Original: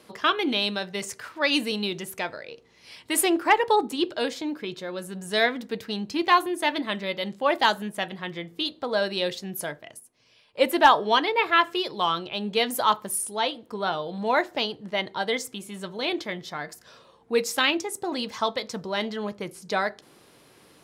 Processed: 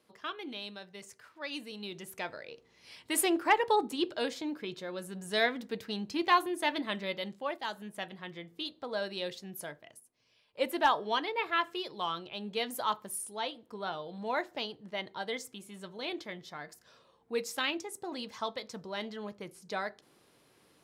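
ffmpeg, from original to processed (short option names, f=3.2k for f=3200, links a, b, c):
-af "volume=2dB,afade=t=in:st=1.72:d=0.69:silence=0.298538,afade=t=out:st=7.12:d=0.5:silence=0.251189,afade=t=in:st=7.62:d=0.34:silence=0.398107"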